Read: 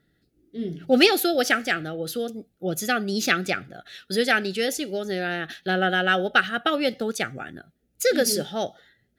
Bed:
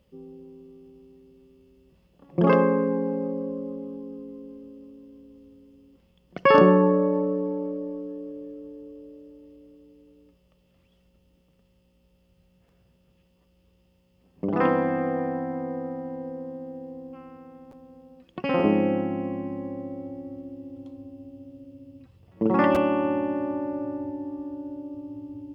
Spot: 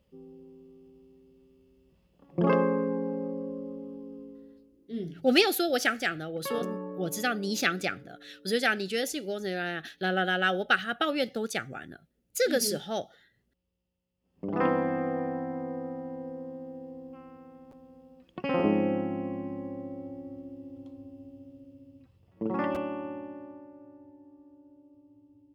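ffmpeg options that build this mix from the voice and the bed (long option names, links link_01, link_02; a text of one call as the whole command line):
ffmpeg -i stem1.wav -i stem2.wav -filter_complex "[0:a]adelay=4350,volume=-5dB[link_01];[1:a]volume=10dB,afade=type=out:start_time=4.23:duration=0.49:silence=0.199526,afade=type=in:start_time=14.21:duration=0.41:silence=0.177828,afade=type=out:start_time=21.26:duration=2.44:silence=0.158489[link_02];[link_01][link_02]amix=inputs=2:normalize=0" out.wav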